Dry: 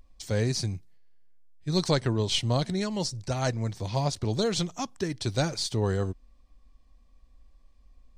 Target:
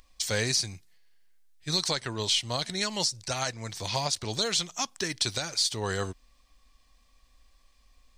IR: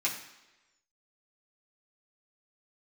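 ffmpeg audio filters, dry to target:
-af "tiltshelf=f=810:g=-9,alimiter=limit=0.133:level=0:latency=1:release=436,volume=1.41"

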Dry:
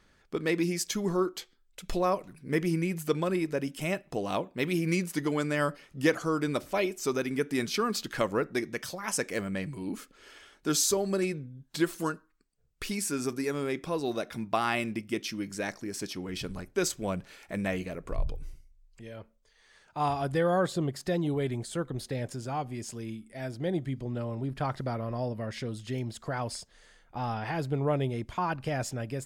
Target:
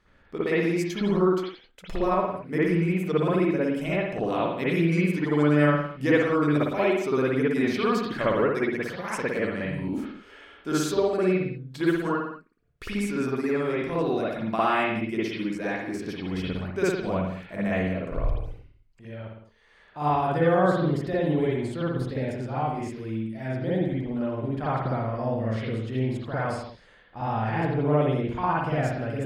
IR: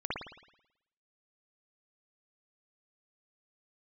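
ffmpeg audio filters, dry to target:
-filter_complex "[0:a]bass=f=250:g=0,treble=f=4000:g=-7[s0];[1:a]atrim=start_sample=2205,afade=t=out:st=0.33:d=0.01,atrim=end_sample=14994[s1];[s0][s1]afir=irnorm=-1:irlink=0"

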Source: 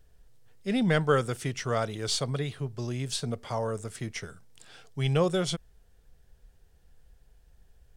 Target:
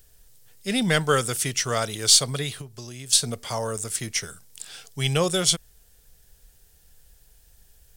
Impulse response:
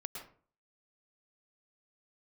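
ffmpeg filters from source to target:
-filter_complex "[0:a]asettb=1/sr,asplit=3[s0][s1][s2];[s0]atrim=end=2.614[s3];[s1]atrim=start=2.61:end=3.13,asetpts=PTS-STARTPTS,afade=t=in:d=0.004:c=qsin,afade=t=out:st=0.516:d=0.004:c=qsin,acompressor=threshold=0.0126:ratio=6[s4];[s2]atrim=start=3.126[s5];[s3][s4]acrossfade=d=0.004:c1=hsin:c2=qsin[s6];[s6][s5]acrossfade=d=0.004:c1=qsin:c2=hsin,crystalizer=i=5.5:c=0,volume=1.12"

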